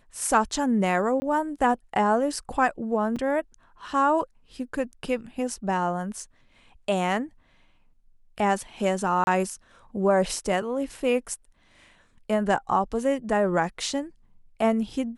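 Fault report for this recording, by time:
0:01.20–0:01.22: drop-out 20 ms
0:03.16–0:03.17: drop-out 5.1 ms
0:09.24–0:09.27: drop-out 31 ms

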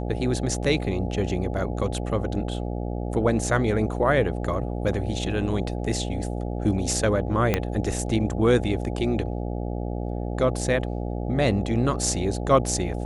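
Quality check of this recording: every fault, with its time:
mains buzz 60 Hz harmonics 14 −29 dBFS
0:07.54: click −7 dBFS

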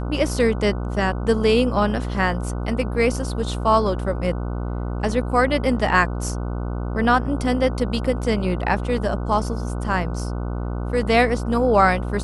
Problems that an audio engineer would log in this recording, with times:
mains buzz 60 Hz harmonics 25 −26 dBFS

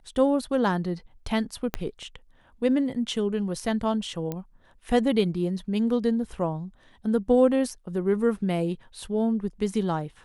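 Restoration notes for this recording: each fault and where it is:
0:01.74: click −12 dBFS
0:04.32: click −18 dBFS

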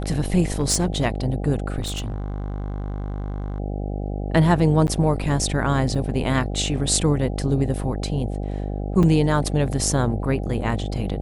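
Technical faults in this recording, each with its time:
mains buzz 50 Hz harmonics 16 −27 dBFS
0:00.59–0:01.06: clipping −14 dBFS
0:01.80–0:03.60: clipping −24 dBFS
0:04.87–0:04.88: drop-out 9.7 ms
0:05.95: drop-out 4.6 ms
0:09.03–0:09.04: drop-out 5.3 ms

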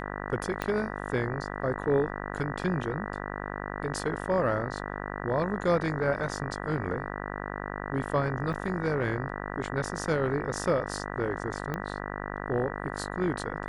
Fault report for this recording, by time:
mains buzz 50 Hz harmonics 39 −36 dBFS
0:00.62: click −15 dBFS
0:08.53: drop-out 2 ms
0:11.74: click −19 dBFS

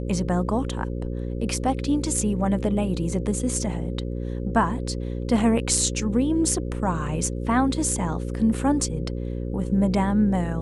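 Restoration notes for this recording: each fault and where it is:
mains buzz 60 Hz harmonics 9 −29 dBFS

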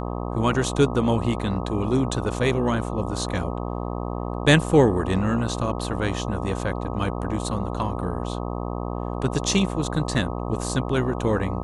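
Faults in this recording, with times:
mains buzz 60 Hz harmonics 21 −29 dBFS

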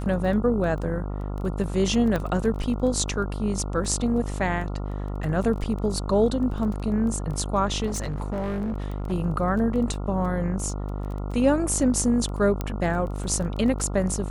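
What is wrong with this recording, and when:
mains buzz 50 Hz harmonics 28 −30 dBFS
surface crackle 11 per second −31 dBFS
0:02.16: click −14 dBFS
0:07.86–0:09.13: clipping −24.5 dBFS
0:12.61: click −14 dBFS

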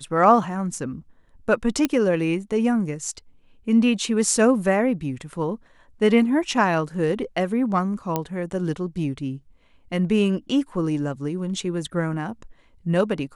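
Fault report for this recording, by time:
0:01.85: click −7 dBFS
0:08.16: click −9 dBFS

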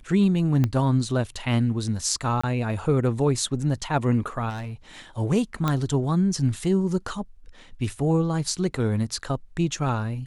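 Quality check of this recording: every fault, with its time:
0:00.64: click −12 dBFS
0:02.41–0:02.44: drop-out 25 ms
0:04.49–0:04.74: clipping −30 dBFS
0:05.68: click −11 dBFS

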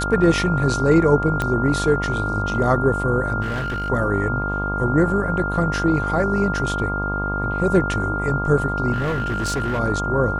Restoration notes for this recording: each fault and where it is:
mains buzz 50 Hz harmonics 25 −26 dBFS
whistle 1,400 Hz −24 dBFS
0:01.42: click −10 dBFS
0:03.41–0:03.90: clipping −21.5 dBFS
0:08.92–0:09.80: clipping −19 dBFS

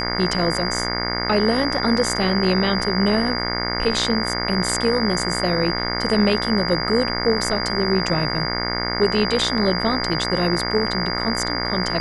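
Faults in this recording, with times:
mains buzz 60 Hz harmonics 37 −26 dBFS
whistle 4,800 Hz −26 dBFS

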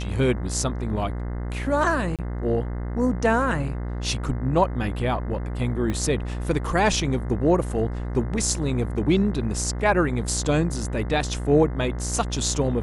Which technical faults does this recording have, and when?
mains buzz 60 Hz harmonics 35 −29 dBFS
0:02.16–0:02.19: drop-out 27 ms
0:05.90: click −16 dBFS

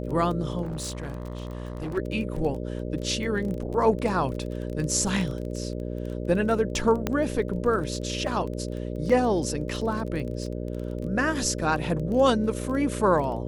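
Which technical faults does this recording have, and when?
mains buzz 60 Hz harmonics 10 −32 dBFS
surface crackle 21 per second −32 dBFS
0:00.62–0:01.98: clipping −28.5 dBFS
0:07.07: click −11 dBFS
0:09.09–0:09.10: drop-out 5.4 ms

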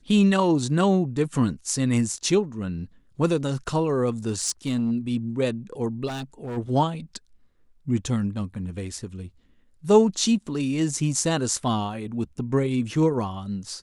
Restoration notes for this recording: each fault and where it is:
0:04.27–0:04.92: clipping −19 dBFS
0:06.07–0:06.58: clipping −29 dBFS

